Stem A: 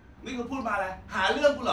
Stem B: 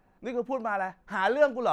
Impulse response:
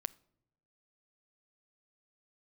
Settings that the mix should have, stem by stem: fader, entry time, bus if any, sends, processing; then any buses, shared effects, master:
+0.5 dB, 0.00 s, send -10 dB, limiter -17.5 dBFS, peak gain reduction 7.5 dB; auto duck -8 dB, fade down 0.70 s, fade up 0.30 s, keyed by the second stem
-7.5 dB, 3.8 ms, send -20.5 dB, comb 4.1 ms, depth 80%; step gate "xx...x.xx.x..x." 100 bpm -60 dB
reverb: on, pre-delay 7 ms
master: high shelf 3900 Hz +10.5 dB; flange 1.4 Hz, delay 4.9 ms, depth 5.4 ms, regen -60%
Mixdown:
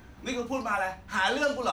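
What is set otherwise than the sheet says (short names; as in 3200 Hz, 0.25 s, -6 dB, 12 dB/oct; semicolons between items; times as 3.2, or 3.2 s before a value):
stem B: missing step gate "xx...x.xx.x..x." 100 bpm -60 dB; master: missing flange 1.4 Hz, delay 4.9 ms, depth 5.4 ms, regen -60%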